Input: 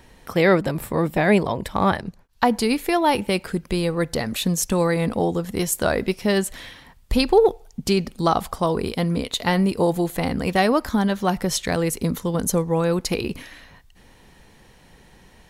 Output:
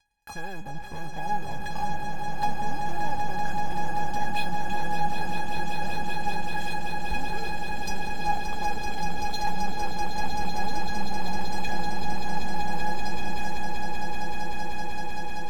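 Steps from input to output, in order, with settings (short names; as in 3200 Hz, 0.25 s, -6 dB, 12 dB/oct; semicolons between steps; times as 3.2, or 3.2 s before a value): HPF 63 Hz 6 dB/oct; treble ducked by the level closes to 540 Hz, closed at -16 dBFS; bell 13000 Hz -7 dB 1.4 oct; sample leveller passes 5; compressor 2.5:1, threshold -12 dBFS, peak gain reduction 4 dB; resonator 830 Hz, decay 0.16 s, harmonics all, mix 100%; swelling echo 0.192 s, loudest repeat 8, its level -7 dB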